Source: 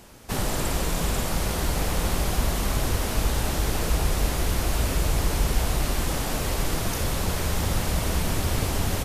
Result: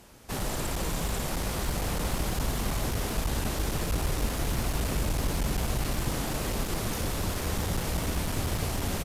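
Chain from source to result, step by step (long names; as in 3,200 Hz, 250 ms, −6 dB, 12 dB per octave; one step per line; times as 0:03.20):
echo with shifted repeats 490 ms, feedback 64%, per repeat +87 Hz, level −11 dB
asymmetric clip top −21.5 dBFS
level −4.5 dB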